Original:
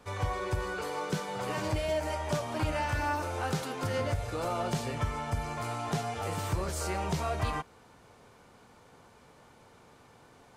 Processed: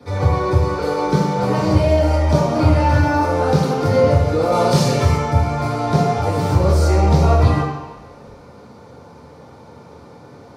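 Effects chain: 4.52–5.16 s: treble shelf 2.6 kHz +11.5 dB; reverberation RT60 1.0 s, pre-delay 3 ms, DRR -7.5 dB; trim -1.5 dB

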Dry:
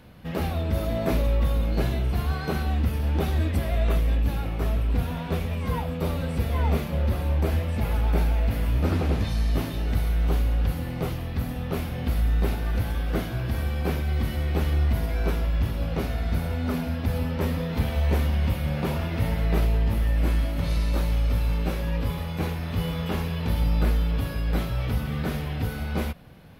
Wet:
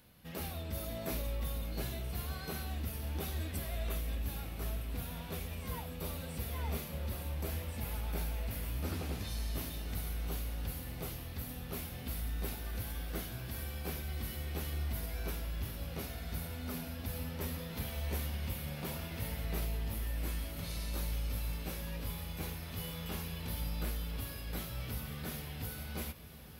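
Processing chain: pre-emphasis filter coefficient 0.8; echo that smears into a reverb 1091 ms, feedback 72%, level -14 dB; trim -1 dB

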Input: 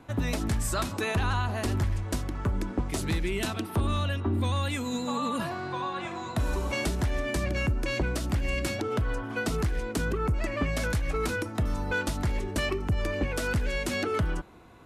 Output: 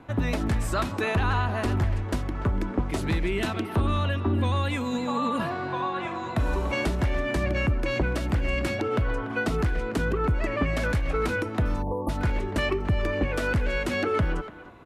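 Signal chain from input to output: speakerphone echo 290 ms, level -11 dB; spectral selection erased 11.82–12.09 s, 1.2–9.5 kHz; tone controls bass -1 dB, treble -10 dB; trim +3.5 dB

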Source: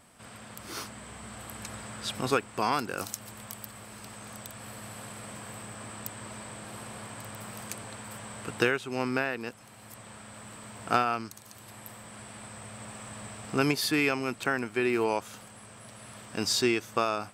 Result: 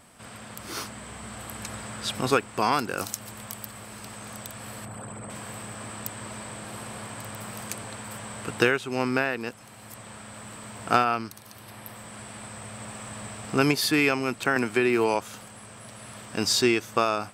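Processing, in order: 4.85–5.30 s: resonances exaggerated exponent 2; 11.04–11.96 s: peaking EQ 7.2 kHz -9 dB 0.35 oct; 14.56–15.15 s: three bands compressed up and down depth 70%; trim +4 dB

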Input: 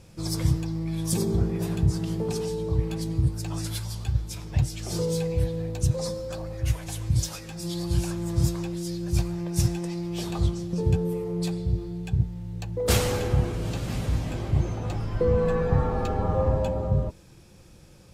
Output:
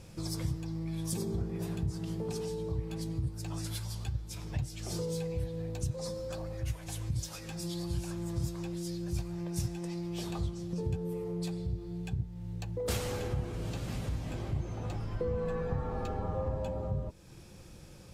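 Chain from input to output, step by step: compression 2:1, threshold -39 dBFS, peak gain reduction 12.5 dB

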